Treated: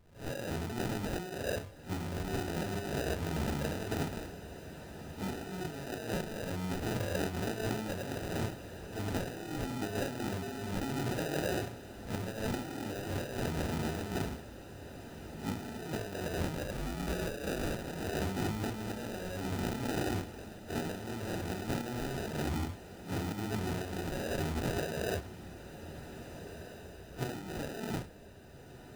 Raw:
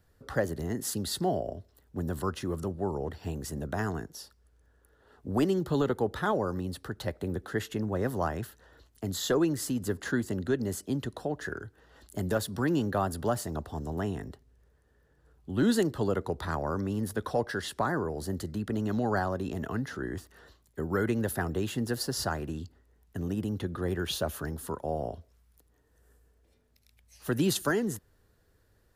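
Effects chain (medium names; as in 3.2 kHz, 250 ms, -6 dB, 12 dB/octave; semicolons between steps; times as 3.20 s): phase randomisation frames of 200 ms; compressor with a negative ratio -37 dBFS, ratio -1; sample-rate reducer 1.1 kHz, jitter 0%; 16.73–17.73 s: frequency shift -47 Hz; on a send: echo that smears into a reverb 1650 ms, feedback 47%, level -12 dB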